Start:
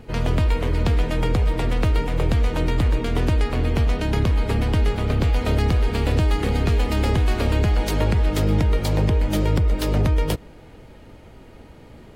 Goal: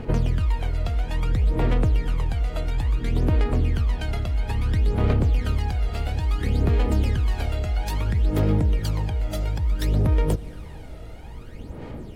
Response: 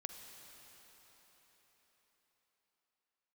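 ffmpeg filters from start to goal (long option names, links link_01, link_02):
-filter_complex "[0:a]acompressor=threshold=-26dB:ratio=6,aphaser=in_gain=1:out_gain=1:delay=1.5:decay=0.68:speed=0.59:type=sinusoidal,asplit=2[link_01][link_02];[1:a]atrim=start_sample=2205,asetrate=29106,aresample=44100[link_03];[link_02][link_03]afir=irnorm=-1:irlink=0,volume=-8dB[link_04];[link_01][link_04]amix=inputs=2:normalize=0,volume=-3dB"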